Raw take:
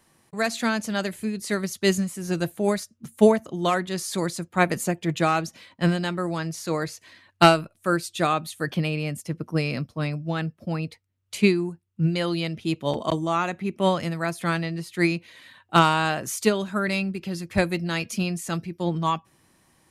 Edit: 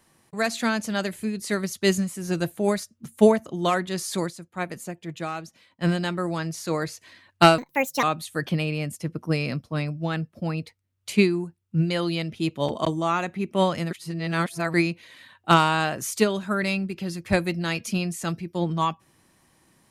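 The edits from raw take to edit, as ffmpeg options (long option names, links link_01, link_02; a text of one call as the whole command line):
ffmpeg -i in.wav -filter_complex "[0:a]asplit=7[link_01][link_02][link_03][link_04][link_05][link_06][link_07];[link_01]atrim=end=4.33,asetpts=PTS-STARTPTS,afade=type=out:start_time=4.21:duration=0.12:silence=0.334965[link_08];[link_02]atrim=start=4.33:end=5.78,asetpts=PTS-STARTPTS,volume=-9.5dB[link_09];[link_03]atrim=start=5.78:end=7.584,asetpts=PTS-STARTPTS,afade=type=in:duration=0.12:silence=0.334965[link_10];[link_04]atrim=start=7.58:end=8.28,asetpts=PTS-STARTPTS,asetrate=68796,aresample=44100,atrim=end_sample=19788,asetpts=PTS-STARTPTS[link_11];[link_05]atrim=start=8.276:end=14.162[link_12];[link_06]atrim=start=14.158:end=14.992,asetpts=PTS-STARTPTS,areverse[link_13];[link_07]atrim=start=14.988[link_14];[link_08][link_09][link_10]concat=n=3:v=0:a=1[link_15];[link_15][link_11]acrossfade=duration=0.004:curve1=hsin:curve2=hsin[link_16];[link_16][link_12]acrossfade=duration=0.004:curve1=hsin:curve2=hsin[link_17];[link_17][link_13]acrossfade=duration=0.004:curve1=hsin:curve2=hsin[link_18];[link_18][link_14]acrossfade=duration=0.004:curve1=hsin:curve2=hsin" out.wav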